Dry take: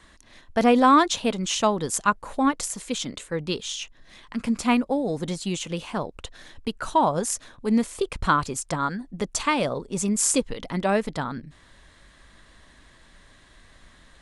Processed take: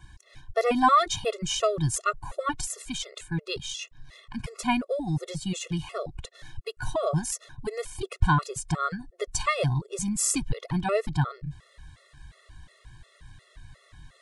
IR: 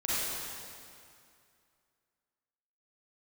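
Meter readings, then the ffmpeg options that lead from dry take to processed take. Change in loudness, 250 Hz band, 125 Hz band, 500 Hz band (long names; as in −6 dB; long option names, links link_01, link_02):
−3.5 dB, −7.0 dB, +4.5 dB, −3.5 dB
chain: -af "lowshelf=frequency=170:width_type=q:width=3:gain=8,afftfilt=real='re*gt(sin(2*PI*2.8*pts/sr)*(1-2*mod(floor(b*sr/1024/360),2)),0)':imag='im*gt(sin(2*PI*2.8*pts/sr)*(1-2*mod(floor(b*sr/1024/360),2)),0)':win_size=1024:overlap=0.75"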